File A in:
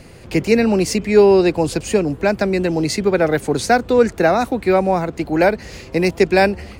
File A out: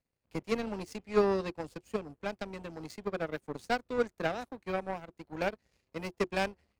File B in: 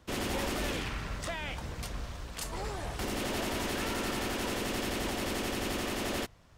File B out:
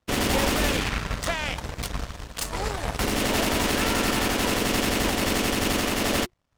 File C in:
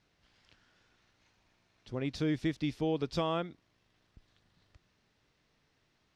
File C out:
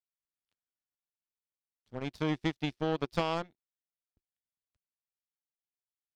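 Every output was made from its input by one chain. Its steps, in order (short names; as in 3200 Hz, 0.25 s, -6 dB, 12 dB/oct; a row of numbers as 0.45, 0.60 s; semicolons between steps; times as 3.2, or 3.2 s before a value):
power-law curve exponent 2; notch 360 Hz, Q 12; normalise peaks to -12 dBFS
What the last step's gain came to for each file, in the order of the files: -10.5, +13.5, +7.0 dB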